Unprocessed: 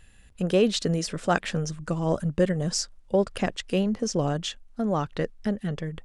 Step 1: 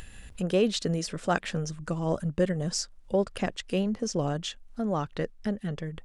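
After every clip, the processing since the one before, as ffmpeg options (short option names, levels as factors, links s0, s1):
-af "acompressor=mode=upward:threshold=0.0316:ratio=2.5,volume=0.708"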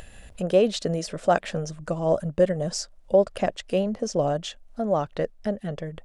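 -af "equalizer=f=620:w=2.1:g=11"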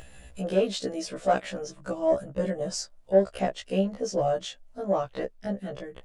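-af "asoftclip=type=tanh:threshold=0.376,afftfilt=real='re*1.73*eq(mod(b,3),0)':imag='im*1.73*eq(mod(b,3),0)':win_size=2048:overlap=0.75"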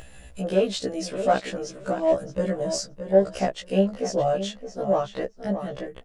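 -filter_complex "[0:a]asplit=2[s0][s1];[s1]adelay=619,lowpass=f=4200:p=1,volume=0.335,asplit=2[s2][s3];[s3]adelay=619,lowpass=f=4200:p=1,volume=0.15[s4];[s0][s2][s4]amix=inputs=3:normalize=0,volume=1.33"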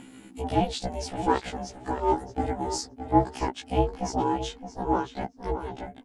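-af "aeval=exprs='val(0)*sin(2*PI*260*n/s)':c=same"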